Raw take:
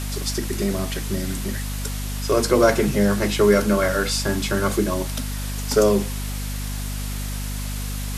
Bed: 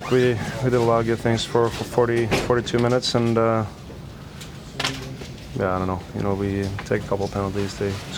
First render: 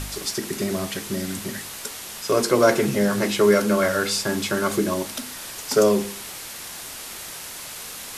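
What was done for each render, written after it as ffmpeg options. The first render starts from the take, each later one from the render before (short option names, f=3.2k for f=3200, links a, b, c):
-af "bandreject=f=50:t=h:w=4,bandreject=f=100:t=h:w=4,bandreject=f=150:t=h:w=4,bandreject=f=200:t=h:w=4,bandreject=f=250:t=h:w=4,bandreject=f=300:t=h:w=4,bandreject=f=350:t=h:w=4,bandreject=f=400:t=h:w=4,bandreject=f=450:t=h:w=4,bandreject=f=500:t=h:w=4"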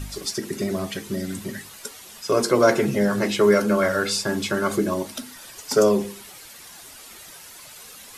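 -af "afftdn=nr=10:nf=-36"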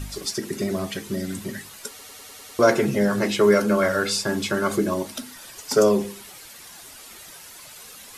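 -filter_complex "[0:a]asplit=8[a][b][c][d][e][f][g][h];[a]atrim=end=1.992[i];[b]atrim=start=1.888:end=1.992[j];[c]atrim=start=1.888:end=1.992[k];[d]atrim=start=1.888:end=1.992[l];[e]atrim=start=1.888:end=1.992[m];[f]atrim=start=1.888:end=1.992[n];[g]atrim=start=1.888:end=1.992[o];[h]atrim=start=2.588[p];[i][j]acrossfade=d=0.004:c1=hsin:c2=hsin[q];[q][k]acrossfade=d=0.004:c1=hsin:c2=hsin[r];[r][l]acrossfade=d=0.004:c1=hsin:c2=hsin[s];[s][m]acrossfade=d=0.004:c1=hsin:c2=hsin[t];[t][n]acrossfade=d=0.004:c1=hsin:c2=hsin[u];[u][o]acrossfade=d=0.004:c1=hsin:c2=hsin[v];[v][p]acrossfade=d=0.004:c1=hsin:c2=hsin"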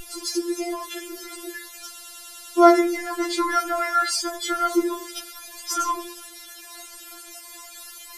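-filter_complex "[0:a]asplit=2[a][b];[b]asoftclip=type=tanh:threshold=-19dB,volume=-5.5dB[c];[a][c]amix=inputs=2:normalize=0,afftfilt=real='re*4*eq(mod(b,16),0)':imag='im*4*eq(mod(b,16),0)':win_size=2048:overlap=0.75"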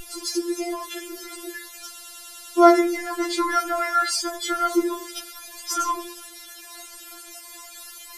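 -af anull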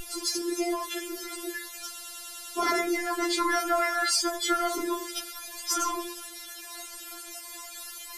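-af "afftfilt=real='re*lt(hypot(re,im),0.891)':imag='im*lt(hypot(re,im),0.891)':win_size=1024:overlap=0.75"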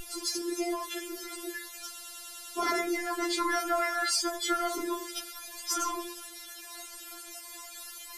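-af "volume=-3dB"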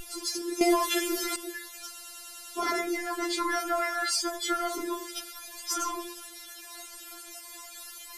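-filter_complex "[0:a]asettb=1/sr,asplit=3[a][b][c];[a]atrim=end=1.864[d];[b]atrim=start=1.86:end=2.49,asetpts=PTS-STARTPTS,afade=t=in:d=0.004:c=qsin,afade=t=out:st=0.626:d=0.004:c=qsin,bandreject=f=3.5k:w=12[e];[c]atrim=start=2.486[f];[d][e]acrossfade=d=0.004:c1=hsin:c2=qsin[g];[g][f]acrossfade=d=0.004:c1=qsin:c2=hsin,asplit=3[h][i][j];[h]atrim=end=0.612[k];[i]atrim=start=0.608:end=1.362,asetpts=PTS-STARTPTS,volume=9.5dB[l];[j]atrim=start=1.358[m];[k][l]acrossfade=d=0.004:c1=hsin:c2=hsin[n];[n][m]acrossfade=d=0.004:c1=hsin:c2=hsin"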